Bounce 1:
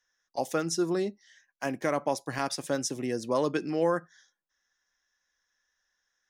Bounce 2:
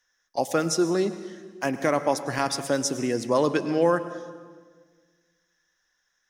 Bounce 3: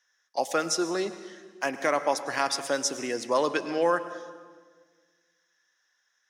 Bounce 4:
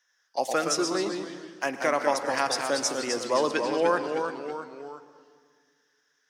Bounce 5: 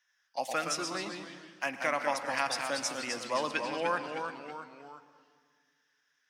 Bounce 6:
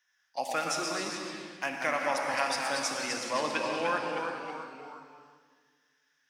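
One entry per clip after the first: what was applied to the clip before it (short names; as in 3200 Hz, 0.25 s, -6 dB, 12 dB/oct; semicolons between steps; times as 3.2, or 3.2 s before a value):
reverb RT60 1.6 s, pre-delay 93 ms, DRR 12 dB; gain +5 dB
weighting filter A
echoes that change speed 86 ms, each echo -1 st, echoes 3, each echo -6 dB
fifteen-band EQ 400 Hz -11 dB, 2500 Hz +6 dB, 6300 Hz -3 dB; gain -4.5 dB
non-linear reverb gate 0.45 s flat, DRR 2.5 dB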